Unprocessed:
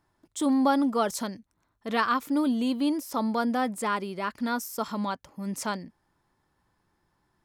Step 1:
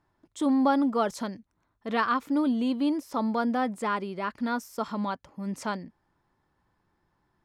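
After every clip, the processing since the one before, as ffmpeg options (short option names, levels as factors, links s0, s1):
-af "aemphasis=mode=reproduction:type=50kf"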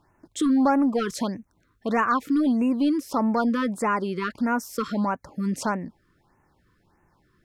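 -filter_complex "[0:a]asplit=2[s0][s1];[s1]acompressor=threshold=0.0224:ratio=12,volume=1.12[s2];[s0][s2]amix=inputs=2:normalize=0,asoftclip=type=tanh:threshold=0.168,afftfilt=real='re*(1-between(b*sr/1024,690*pow(4200/690,0.5+0.5*sin(2*PI*1.6*pts/sr))/1.41,690*pow(4200/690,0.5+0.5*sin(2*PI*1.6*pts/sr))*1.41))':imag='im*(1-between(b*sr/1024,690*pow(4200/690,0.5+0.5*sin(2*PI*1.6*pts/sr))/1.41,690*pow(4200/690,0.5+0.5*sin(2*PI*1.6*pts/sr))*1.41))':win_size=1024:overlap=0.75,volume=1.33"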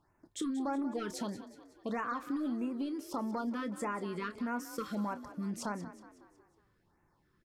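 -filter_complex "[0:a]acompressor=threshold=0.0631:ratio=6,asplit=2[s0][s1];[s1]adelay=29,volume=0.224[s2];[s0][s2]amix=inputs=2:normalize=0,asplit=6[s3][s4][s5][s6][s7][s8];[s4]adelay=184,afreqshift=39,volume=0.2[s9];[s5]adelay=368,afreqshift=78,volume=0.0977[s10];[s6]adelay=552,afreqshift=117,volume=0.0479[s11];[s7]adelay=736,afreqshift=156,volume=0.0234[s12];[s8]adelay=920,afreqshift=195,volume=0.0115[s13];[s3][s9][s10][s11][s12][s13]amix=inputs=6:normalize=0,volume=0.355"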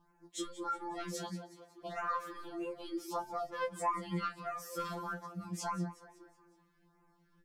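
-af "flanger=delay=4.5:depth=1.3:regen=87:speed=0.31:shape=triangular,afftfilt=real='re*2.83*eq(mod(b,8),0)':imag='im*2.83*eq(mod(b,8),0)':win_size=2048:overlap=0.75,volume=2.51"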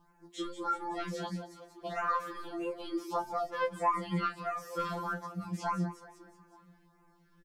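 -filter_complex "[0:a]acrossover=split=3900[s0][s1];[s1]acompressor=threshold=0.00112:ratio=4:attack=1:release=60[s2];[s0][s2]amix=inputs=2:normalize=0,bandreject=f=50:t=h:w=6,bandreject=f=100:t=h:w=6,bandreject=f=150:t=h:w=6,bandreject=f=200:t=h:w=6,bandreject=f=250:t=h:w=6,bandreject=f=300:t=h:w=6,bandreject=f=350:t=h:w=6,asplit=2[s3][s4];[s4]adelay=874.6,volume=0.0447,highshelf=f=4000:g=-19.7[s5];[s3][s5]amix=inputs=2:normalize=0,volume=1.68"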